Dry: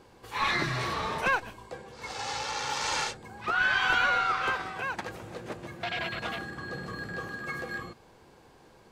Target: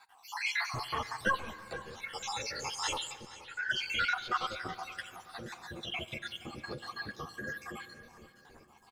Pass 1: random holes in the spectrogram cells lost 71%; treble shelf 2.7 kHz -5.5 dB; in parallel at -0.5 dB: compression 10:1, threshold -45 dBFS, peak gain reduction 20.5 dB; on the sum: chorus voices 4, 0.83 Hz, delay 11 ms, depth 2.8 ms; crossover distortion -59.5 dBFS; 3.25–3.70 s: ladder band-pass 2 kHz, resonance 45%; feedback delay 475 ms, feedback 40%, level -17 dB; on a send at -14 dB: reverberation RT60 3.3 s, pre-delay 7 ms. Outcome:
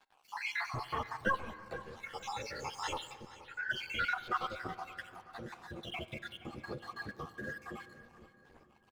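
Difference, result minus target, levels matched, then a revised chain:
crossover distortion: distortion +10 dB; 4 kHz band -4.0 dB
random holes in the spectrogram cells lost 71%; treble shelf 2.7 kHz +6 dB; in parallel at -0.5 dB: compression 10:1, threshold -45 dBFS, peak gain reduction 23 dB; on the sum: chorus voices 4, 0.83 Hz, delay 11 ms, depth 2.8 ms; crossover distortion -68.5 dBFS; 3.25–3.70 s: ladder band-pass 2 kHz, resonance 45%; feedback delay 475 ms, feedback 40%, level -17 dB; on a send at -14 dB: reverberation RT60 3.3 s, pre-delay 7 ms

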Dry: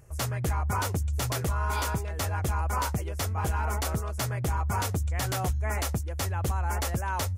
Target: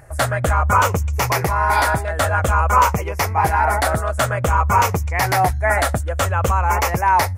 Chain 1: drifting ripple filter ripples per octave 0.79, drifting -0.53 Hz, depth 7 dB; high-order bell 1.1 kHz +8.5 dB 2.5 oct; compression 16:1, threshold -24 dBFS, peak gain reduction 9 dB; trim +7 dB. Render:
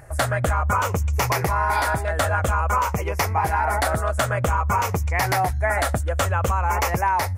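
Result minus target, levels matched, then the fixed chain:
compression: peak gain reduction +9 dB
drifting ripple filter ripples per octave 0.79, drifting -0.53 Hz, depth 7 dB; high-order bell 1.1 kHz +8.5 dB 2.5 oct; trim +7 dB

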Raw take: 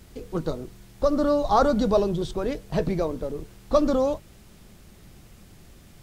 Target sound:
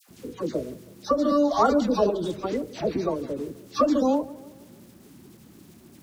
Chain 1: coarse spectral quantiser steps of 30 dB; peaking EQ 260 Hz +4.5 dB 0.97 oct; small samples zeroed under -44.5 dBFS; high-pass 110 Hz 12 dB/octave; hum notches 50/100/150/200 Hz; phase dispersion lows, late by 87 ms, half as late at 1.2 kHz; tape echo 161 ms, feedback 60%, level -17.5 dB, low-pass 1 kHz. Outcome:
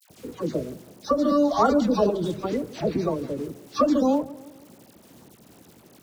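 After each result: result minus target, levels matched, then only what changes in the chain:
small samples zeroed: distortion +10 dB; 125 Hz band +3.5 dB
change: small samples zeroed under -52.5 dBFS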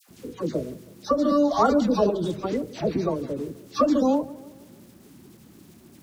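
125 Hz band +3.5 dB
add after high-pass: dynamic bell 150 Hz, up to -6 dB, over -39 dBFS, Q 1.4

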